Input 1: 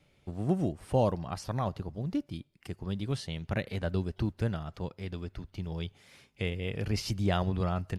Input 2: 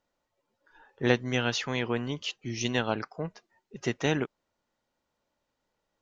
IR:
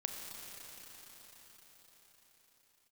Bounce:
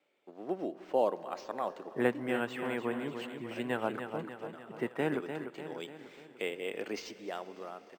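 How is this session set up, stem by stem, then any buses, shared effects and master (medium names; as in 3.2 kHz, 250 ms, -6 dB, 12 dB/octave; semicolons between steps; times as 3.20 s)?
1.87 s -6.5 dB -> 2.29 s -17 dB -> 4.70 s -17 dB -> 5.19 s -4.5 dB -> 6.93 s -4.5 dB -> 7.29 s -14 dB, 0.00 s, send -11.5 dB, echo send -19.5 dB, low-pass 4 kHz 6 dB/octave; level rider gain up to 4.5 dB; high-pass 310 Hz 24 dB/octave
-4.5 dB, 0.95 s, send -17 dB, echo send -7 dB, three-band isolator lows -17 dB, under 170 Hz, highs -23 dB, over 2.6 kHz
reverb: on, RT60 5.6 s, pre-delay 29 ms
echo: feedback delay 296 ms, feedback 55%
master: decimation joined by straight lines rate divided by 4×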